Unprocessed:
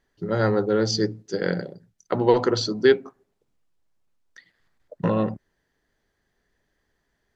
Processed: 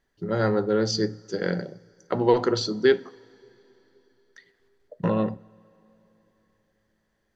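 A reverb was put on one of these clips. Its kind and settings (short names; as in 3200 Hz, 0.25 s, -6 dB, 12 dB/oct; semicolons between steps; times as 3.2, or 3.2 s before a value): two-slope reverb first 0.4 s, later 4 s, from -20 dB, DRR 15 dB; gain -2 dB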